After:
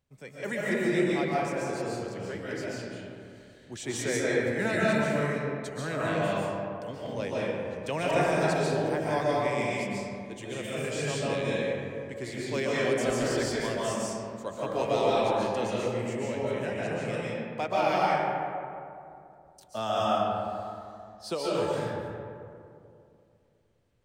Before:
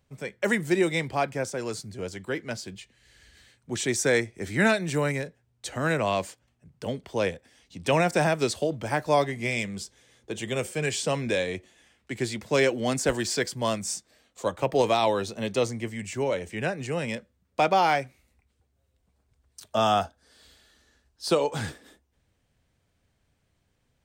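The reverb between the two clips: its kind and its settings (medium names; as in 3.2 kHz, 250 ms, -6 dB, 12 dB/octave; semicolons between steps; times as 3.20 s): algorithmic reverb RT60 2.6 s, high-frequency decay 0.4×, pre-delay 100 ms, DRR -7 dB; trim -10 dB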